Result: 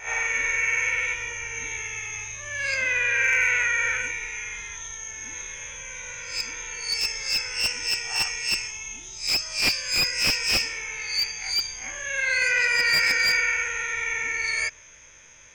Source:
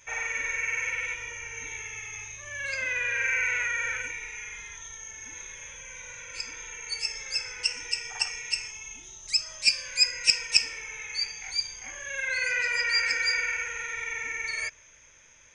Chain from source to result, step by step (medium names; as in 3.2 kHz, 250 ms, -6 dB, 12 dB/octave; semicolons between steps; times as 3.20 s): reverse spectral sustain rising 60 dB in 0.34 s; slew-rate limiter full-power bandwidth 280 Hz; trim +4.5 dB